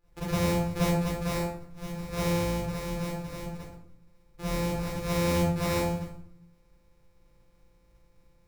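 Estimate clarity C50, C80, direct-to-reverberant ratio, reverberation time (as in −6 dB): −3.0 dB, 4.5 dB, −10.5 dB, 0.60 s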